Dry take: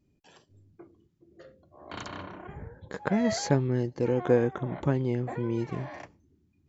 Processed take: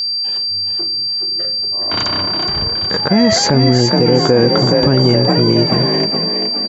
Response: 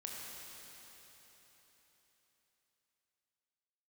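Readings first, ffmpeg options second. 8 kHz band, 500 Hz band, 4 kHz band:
no reading, +14.5 dB, +33.5 dB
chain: -filter_complex "[0:a]asplit=7[s0][s1][s2][s3][s4][s5][s6];[s1]adelay=419,afreqshift=39,volume=0.447[s7];[s2]adelay=838,afreqshift=78,volume=0.229[s8];[s3]adelay=1257,afreqshift=117,volume=0.116[s9];[s4]adelay=1676,afreqshift=156,volume=0.0596[s10];[s5]adelay=2095,afreqshift=195,volume=0.0302[s11];[s6]adelay=2514,afreqshift=234,volume=0.0155[s12];[s0][s7][s8][s9][s10][s11][s12]amix=inputs=7:normalize=0,aeval=exprs='val(0)+0.0224*sin(2*PI*4700*n/s)':c=same,alimiter=level_in=7.94:limit=0.891:release=50:level=0:latency=1,volume=0.891"

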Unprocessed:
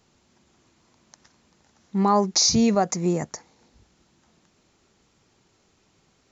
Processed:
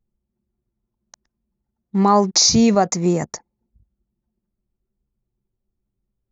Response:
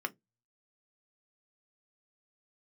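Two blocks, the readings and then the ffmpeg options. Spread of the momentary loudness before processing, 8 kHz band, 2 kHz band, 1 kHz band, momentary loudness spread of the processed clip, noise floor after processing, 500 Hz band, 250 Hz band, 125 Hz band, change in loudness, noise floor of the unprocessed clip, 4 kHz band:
15 LU, no reading, +5.0 dB, +5.0 dB, 12 LU, -81 dBFS, +5.0 dB, +5.0 dB, +5.0 dB, +5.5 dB, -65 dBFS, +5.0 dB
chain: -af "anlmdn=0.0398,volume=1.78"

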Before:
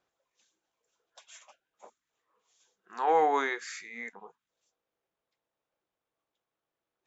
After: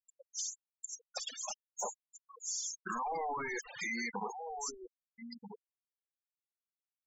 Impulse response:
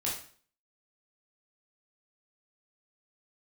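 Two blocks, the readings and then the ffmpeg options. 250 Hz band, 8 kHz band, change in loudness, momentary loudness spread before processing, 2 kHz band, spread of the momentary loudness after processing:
-2.0 dB, no reading, -10.0 dB, 18 LU, -2.5 dB, 17 LU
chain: -filter_complex "[0:a]asubboost=boost=9.5:cutoff=150,crystalizer=i=2:c=0,aeval=exprs='(tanh(126*val(0)+0.15)-tanh(0.15))/126':c=same,acompressor=threshold=0.00126:ratio=2,highshelf=f=3200:t=q:w=1.5:g=10,bandreject=f=3900:w=5.9,aeval=exprs='0.0251*sin(PI/2*7.94*val(0)/0.0251)':c=same,asplit=2[s0][s1];[s1]adelay=1283,volume=0.251,highshelf=f=4000:g=-28.9[s2];[s0][s2]amix=inputs=2:normalize=0,acrossover=split=310|4500[s3][s4][s5];[s3]acompressor=threshold=0.00158:ratio=4[s6];[s4]acompressor=threshold=0.00794:ratio=4[s7];[s5]acompressor=threshold=0.00447:ratio=4[s8];[s6][s7][s8]amix=inputs=3:normalize=0,afftfilt=real='re*gte(hypot(re,im),0.0141)':imag='im*gte(hypot(re,im),0.0141)':win_size=1024:overlap=0.75,volume=2.24"

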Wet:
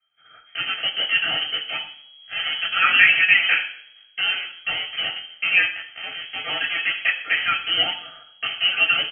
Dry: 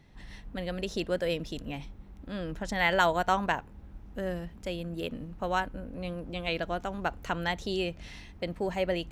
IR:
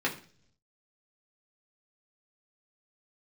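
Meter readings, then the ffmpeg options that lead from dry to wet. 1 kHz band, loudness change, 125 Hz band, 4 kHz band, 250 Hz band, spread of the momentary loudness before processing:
+1.5 dB, +12.5 dB, under -10 dB, +19.0 dB, under -10 dB, 16 LU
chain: -filter_complex "[0:a]agate=range=0.0891:threshold=0.00708:ratio=16:detection=peak,bandreject=f=60:t=h:w=6,bandreject=f=120:t=h:w=6,bandreject=f=180:t=h:w=6,bandreject=f=240:t=h:w=6,bandreject=f=300:t=h:w=6,aecho=1:1:6.7:0.42,acrossover=split=190|790|1800[s0][s1][s2][s3];[s0]acompressor=threshold=0.00224:ratio=6[s4];[s1]acrusher=bits=5:mix=0:aa=0.000001[s5];[s3]alimiter=level_in=1.78:limit=0.0631:level=0:latency=1,volume=0.562[s6];[s4][s5][s2][s6]amix=inputs=4:normalize=0,aecho=1:1:123|246:0.0891|0.0285[s7];[1:a]atrim=start_sample=2205,asetrate=33075,aresample=44100[s8];[s7][s8]afir=irnorm=-1:irlink=0,lowpass=f=2800:t=q:w=0.5098,lowpass=f=2800:t=q:w=0.6013,lowpass=f=2800:t=q:w=0.9,lowpass=f=2800:t=q:w=2.563,afreqshift=-3300,asuperstop=centerf=990:order=12:qfactor=5.8"

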